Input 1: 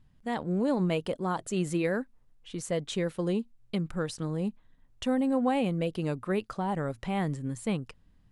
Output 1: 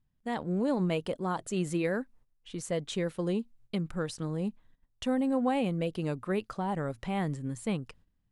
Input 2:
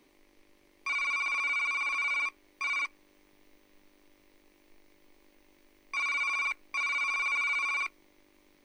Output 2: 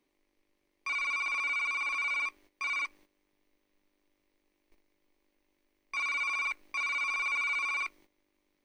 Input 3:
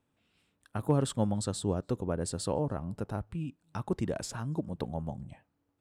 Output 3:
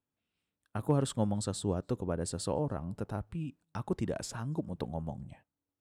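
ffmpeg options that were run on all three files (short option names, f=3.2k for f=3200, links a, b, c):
-af "agate=range=-12dB:threshold=-55dB:ratio=16:detection=peak,volume=-1.5dB"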